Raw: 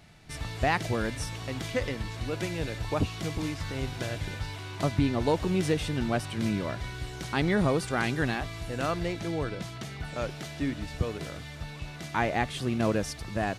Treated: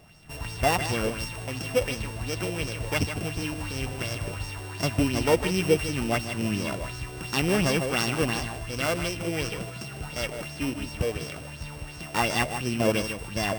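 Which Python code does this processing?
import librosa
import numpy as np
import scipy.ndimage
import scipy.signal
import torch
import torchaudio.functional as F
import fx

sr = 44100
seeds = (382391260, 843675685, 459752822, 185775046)

y = np.r_[np.sort(x[:len(x) // 16 * 16].reshape(-1, 16), axis=1).ravel(), x[len(x) // 16 * 16:]]
y = y + 10.0 ** (-8.5 / 20.0) * np.pad(y, (int(153 * sr / 1000.0), 0))[:len(y)]
y = fx.bell_lfo(y, sr, hz=2.8, low_hz=460.0, high_hz=5900.0, db=9)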